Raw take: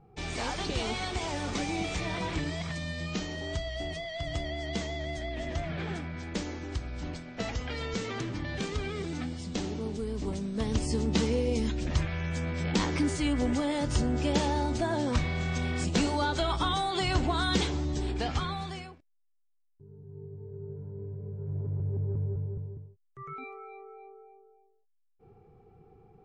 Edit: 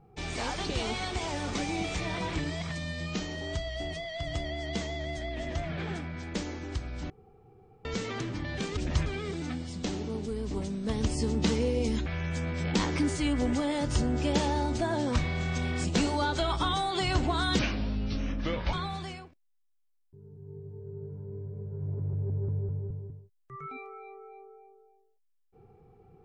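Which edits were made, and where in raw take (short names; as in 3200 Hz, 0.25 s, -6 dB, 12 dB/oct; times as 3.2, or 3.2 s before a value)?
7.1–7.85 room tone
11.77–12.06 move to 8.77
17.59–18.4 speed 71%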